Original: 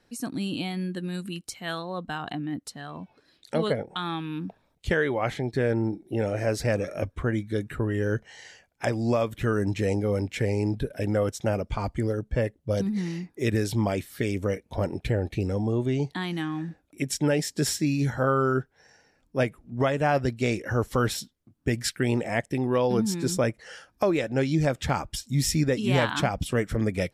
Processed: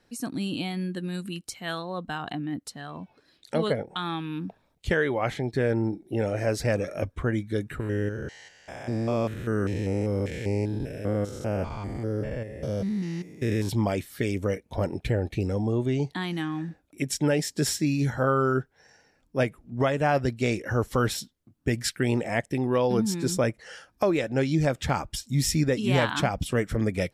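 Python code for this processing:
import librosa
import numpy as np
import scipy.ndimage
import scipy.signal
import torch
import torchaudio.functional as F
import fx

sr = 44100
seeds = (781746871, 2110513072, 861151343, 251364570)

y = fx.spec_steps(x, sr, hold_ms=200, at=(7.79, 13.68), fade=0.02)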